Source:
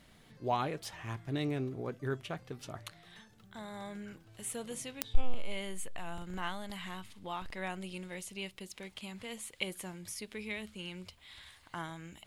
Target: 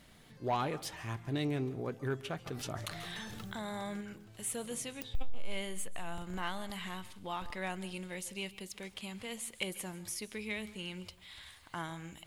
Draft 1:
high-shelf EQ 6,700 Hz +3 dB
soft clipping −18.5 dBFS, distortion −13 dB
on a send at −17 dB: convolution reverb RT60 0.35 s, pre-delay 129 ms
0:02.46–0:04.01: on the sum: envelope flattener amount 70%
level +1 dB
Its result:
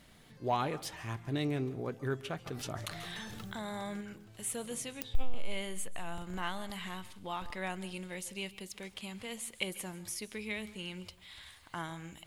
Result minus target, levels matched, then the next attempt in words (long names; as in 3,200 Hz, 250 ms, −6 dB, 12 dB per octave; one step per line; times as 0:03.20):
soft clipping: distortion −6 dB
high-shelf EQ 6,700 Hz +3 dB
soft clipping −25 dBFS, distortion −7 dB
on a send at −17 dB: convolution reverb RT60 0.35 s, pre-delay 129 ms
0:02.46–0:04.01: on the sum: envelope flattener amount 70%
level +1 dB